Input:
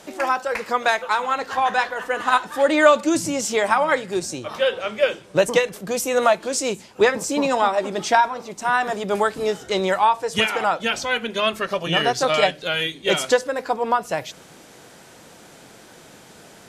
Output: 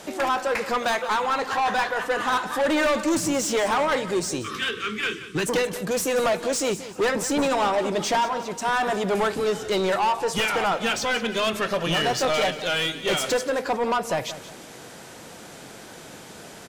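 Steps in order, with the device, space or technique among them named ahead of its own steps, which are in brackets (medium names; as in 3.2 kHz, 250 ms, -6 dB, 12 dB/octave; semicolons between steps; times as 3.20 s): 4.42–5.47 s: Chebyshev band-stop 440–1100 Hz, order 4; saturation between pre-emphasis and de-emphasis (treble shelf 3.9 kHz +7 dB; saturation -22 dBFS, distortion -6 dB; treble shelf 3.9 kHz -7 dB); feedback delay 179 ms, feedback 34%, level -14 dB; trim +3.5 dB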